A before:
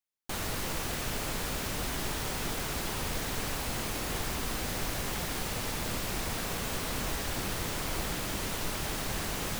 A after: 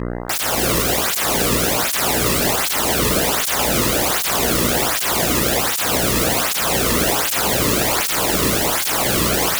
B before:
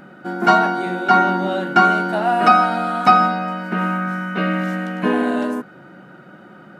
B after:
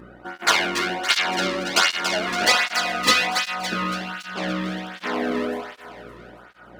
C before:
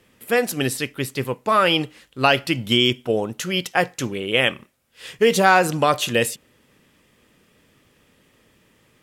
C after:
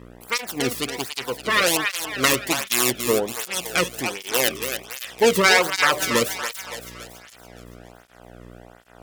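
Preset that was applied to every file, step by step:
self-modulated delay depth 0.78 ms; buzz 60 Hz, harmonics 34, -37 dBFS -7 dB/oct; reverse; upward compressor, threshold -33 dBFS; reverse; thinning echo 0.282 s, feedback 53%, high-pass 420 Hz, level -7 dB; tape flanging out of phase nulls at 1.3 Hz, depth 1.4 ms; normalise peaks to -3 dBFS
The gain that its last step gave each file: +20.5, -2.0, +1.5 dB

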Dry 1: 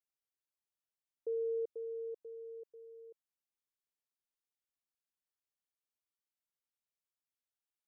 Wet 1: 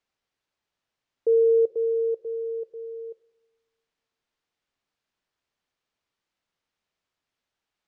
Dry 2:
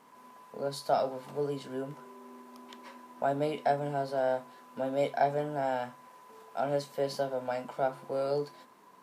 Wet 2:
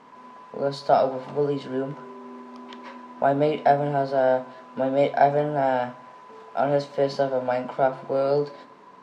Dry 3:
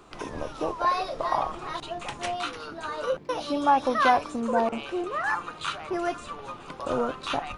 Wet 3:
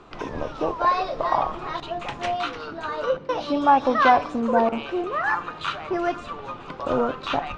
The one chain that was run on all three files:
air absorption 130 m; two-slope reverb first 0.94 s, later 2.6 s, from -26 dB, DRR 17.5 dB; match loudness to -24 LUFS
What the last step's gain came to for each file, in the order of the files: +16.0, +9.0, +4.5 dB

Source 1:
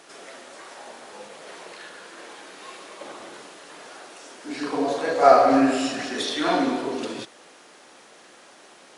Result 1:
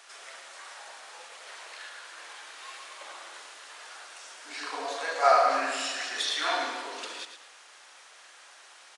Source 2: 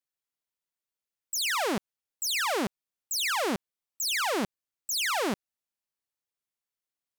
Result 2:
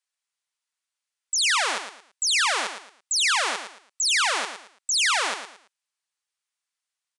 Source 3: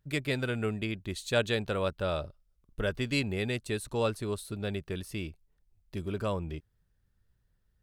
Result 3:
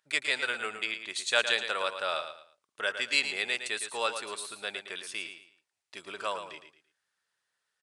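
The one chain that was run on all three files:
HPF 1000 Hz 12 dB/oct; on a send: feedback echo 0.112 s, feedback 29%, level -9 dB; on the sum: downsampling 22050 Hz; normalise peaks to -9 dBFS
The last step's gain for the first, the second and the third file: -1.0, +7.5, +6.5 dB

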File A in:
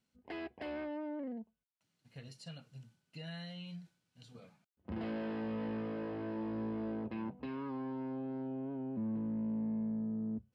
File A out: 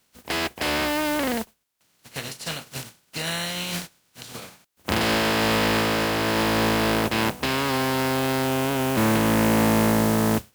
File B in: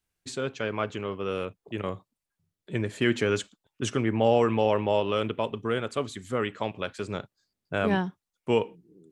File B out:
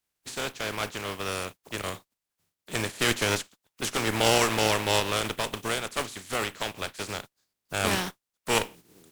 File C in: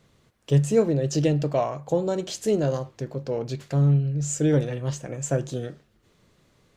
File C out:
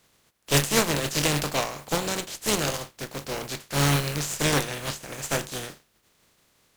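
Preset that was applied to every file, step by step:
spectral contrast lowered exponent 0.4; added harmonics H 8 -18 dB, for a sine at -3 dBFS; normalise peaks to -6 dBFS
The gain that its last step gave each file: +17.0, -0.5, -3.0 dB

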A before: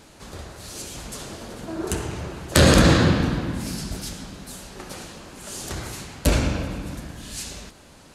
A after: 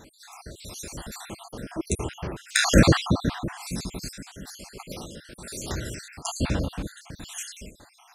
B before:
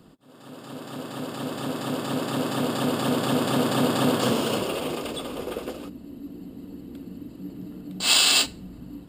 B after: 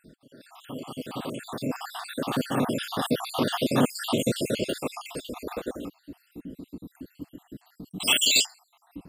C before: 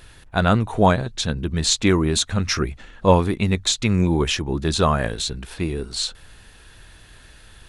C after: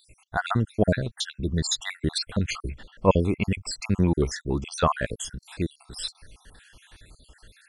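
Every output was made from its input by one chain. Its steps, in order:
random spectral dropouts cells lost 61%; match loudness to -27 LUFS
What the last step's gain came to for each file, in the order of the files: +1.0, +2.0, -2.0 dB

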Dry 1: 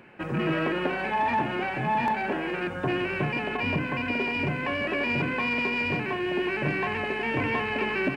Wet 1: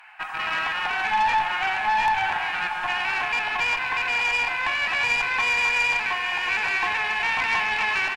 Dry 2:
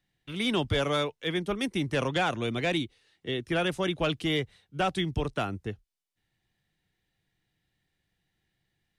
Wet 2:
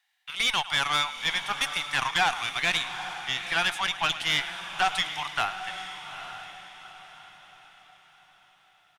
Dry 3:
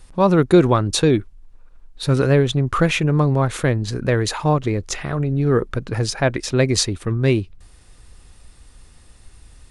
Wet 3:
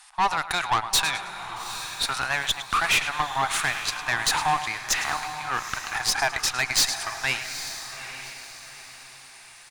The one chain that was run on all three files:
elliptic high-pass 770 Hz, stop band 40 dB; feedback echo 0.106 s, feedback 32%, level -15.5 dB; dynamic EQ 1300 Hz, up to -5 dB, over -33 dBFS, Q 2; tube stage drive 25 dB, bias 0.55; on a send: diffused feedback echo 0.852 s, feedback 40%, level -10 dB; on the sum: normalise peaks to -12 dBFS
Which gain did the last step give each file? +10.0, +10.5, +8.5 dB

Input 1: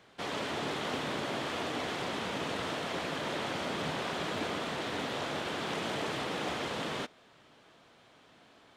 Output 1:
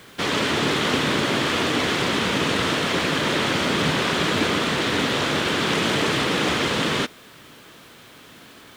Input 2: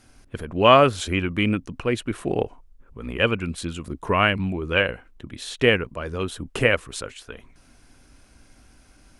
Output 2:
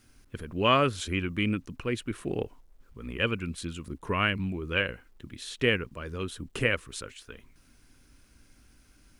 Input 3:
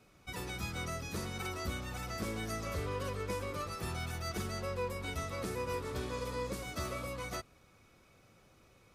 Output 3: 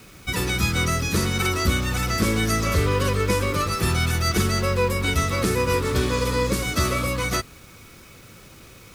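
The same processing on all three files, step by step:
bell 720 Hz -8 dB 0.9 oct; bit-crush 11-bit; normalise peaks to -9 dBFS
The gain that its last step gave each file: +15.0, -5.5, +17.5 dB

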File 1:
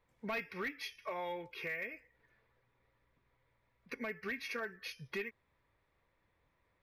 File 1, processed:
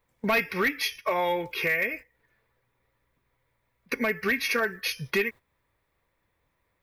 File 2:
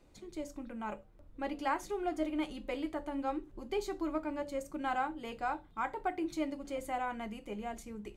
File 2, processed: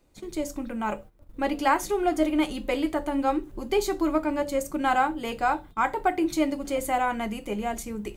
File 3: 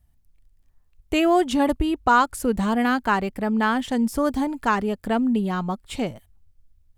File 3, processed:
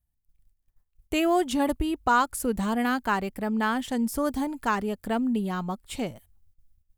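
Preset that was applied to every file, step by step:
gate -54 dBFS, range -12 dB; high shelf 9000 Hz +10.5 dB; match loudness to -27 LUFS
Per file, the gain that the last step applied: +14.0, +11.0, -4.5 dB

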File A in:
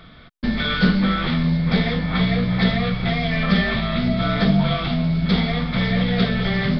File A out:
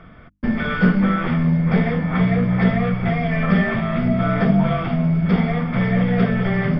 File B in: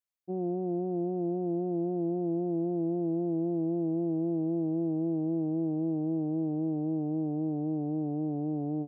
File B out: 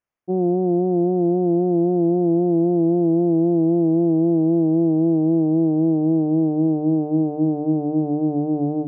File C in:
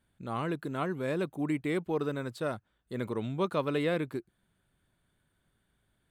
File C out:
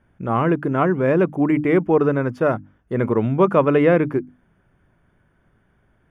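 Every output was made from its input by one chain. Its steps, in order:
running mean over 11 samples; notches 50/100/150/200/250/300 Hz; match loudness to -19 LUFS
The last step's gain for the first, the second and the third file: +2.5, +12.5, +15.0 dB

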